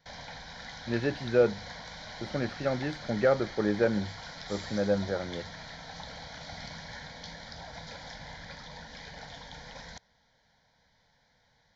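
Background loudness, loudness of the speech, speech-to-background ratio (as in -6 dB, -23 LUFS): -43.0 LUFS, -30.0 LUFS, 13.0 dB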